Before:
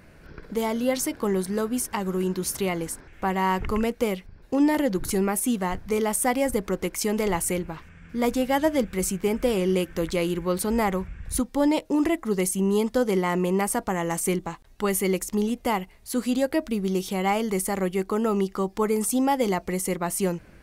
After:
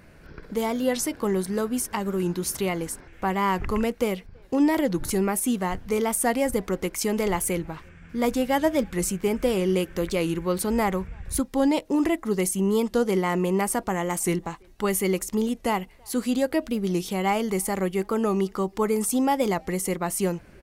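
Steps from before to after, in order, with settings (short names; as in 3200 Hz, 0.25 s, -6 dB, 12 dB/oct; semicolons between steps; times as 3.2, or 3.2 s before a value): speakerphone echo 0.33 s, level -29 dB; record warp 45 rpm, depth 100 cents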